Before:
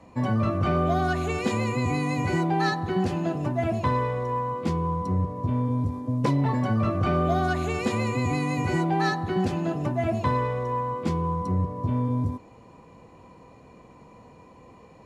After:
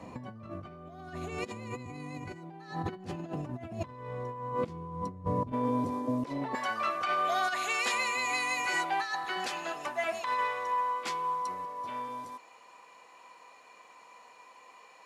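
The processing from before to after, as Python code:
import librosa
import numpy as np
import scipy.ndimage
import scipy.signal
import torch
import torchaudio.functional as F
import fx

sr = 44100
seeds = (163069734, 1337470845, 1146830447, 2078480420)

y = fx.highpass(x, sr, hz=fx.steps((0.0, 88.0), (5.52, 350.0), (6.55, 1200.0)), slope=12)
y = fx.over_compress(y, sr, threshold_db=-33.0, ratio=-0.5)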